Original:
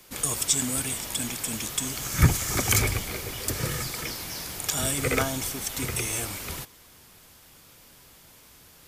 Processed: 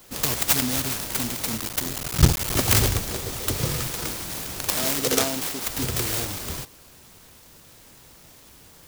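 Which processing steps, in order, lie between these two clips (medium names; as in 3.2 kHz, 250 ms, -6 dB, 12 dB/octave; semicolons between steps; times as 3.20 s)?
1.57–2.56 s: cycle switcher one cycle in 3, muted; 4.73–5.67 s: high-pass 220 Hz 12 dB/octave; delay time shaken by noise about 5 kHz, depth 0.15 ms; trim +4 dB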